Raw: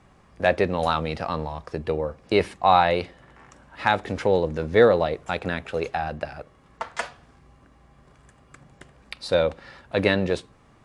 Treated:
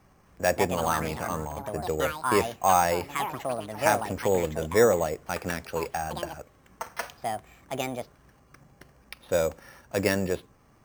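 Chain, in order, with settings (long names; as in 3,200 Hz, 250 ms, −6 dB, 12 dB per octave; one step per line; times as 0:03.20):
bad sample-rate conversion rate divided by 6×, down filtered, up hold
delay with pitch and tempo change per echo 262 ms, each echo +5 semitones, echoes 2, each echo −6 dB
level −4 dB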